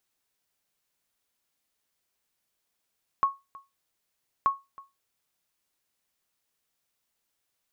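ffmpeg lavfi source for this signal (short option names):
-f lavfi -i "aevalsrc='0.178*(sin(2*PI*1100*mod(t,1.23))*exp(-6.91*mod(t,1.23)/0.22)+0.075*sin(2*PI*1100*max(mod(t,1.23)-0.32,0))*exp(-6.91*max(mod(t,1.23)-0.32,0)/0.22))':d=2.46:s=44100"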